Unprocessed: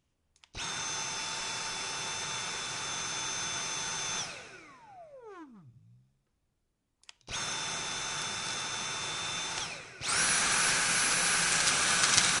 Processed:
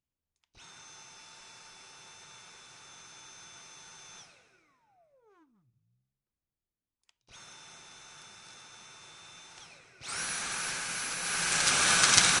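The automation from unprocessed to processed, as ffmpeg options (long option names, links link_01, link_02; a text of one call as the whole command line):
ffmpeg -i in.wav -af "volume=3dB,afade=type=in:start_time=9.57:duration=0.56:silence=0.375837,afade=type=in:start_time=11.2:duration=0.67:silence=0.298538" out.wav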